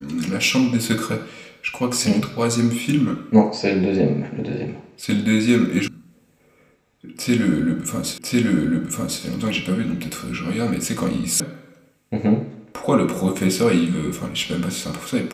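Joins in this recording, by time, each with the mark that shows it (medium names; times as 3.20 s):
5.88 s: sound stops dead
8.18 s: repeat of the last 1.05 s
11.40 s: sound stops dead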